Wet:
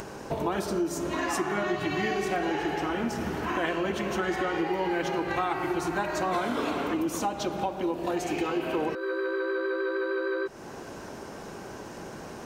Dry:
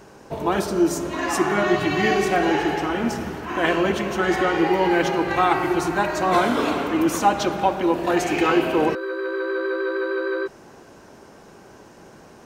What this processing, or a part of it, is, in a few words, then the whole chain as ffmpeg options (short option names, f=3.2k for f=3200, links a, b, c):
upward and downward compression: -filter_complex "[0:a]acompressor=mode=upward:threshold=-40dB:ratio=2.5,acompressor=threshold=-32dB:ratio=4,asettb=1/sr,asplit=3[a][b][c];[a]atrim=end=6.944[d];[b]atrim=start=6.94:end=8.6,asetpts=PTS-STARTPTS,afade=t=in:d=0.004:c=qsin,afade=t=out:st=1.656:d=0.004:c=qsin,equalizer=f=1.7k:w=1.1:g=-5.5[e];[c]atrim=start=8.596[f];[d][e]acrossfade=d=0.004:c1=hsin:c2=qsin[g];[g][f]acrossfade=d=0.004:c1=qsin:c2=hsin,volume=4dB"